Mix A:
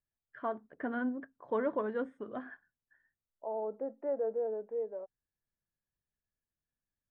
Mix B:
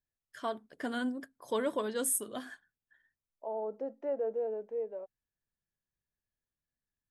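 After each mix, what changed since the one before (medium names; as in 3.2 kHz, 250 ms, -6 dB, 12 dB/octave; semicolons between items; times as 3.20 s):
master: remove low-pass 1.9 kHz 24 dB/octave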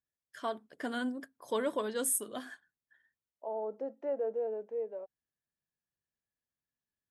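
master: add high-pass 140 Hz 6 dB/octave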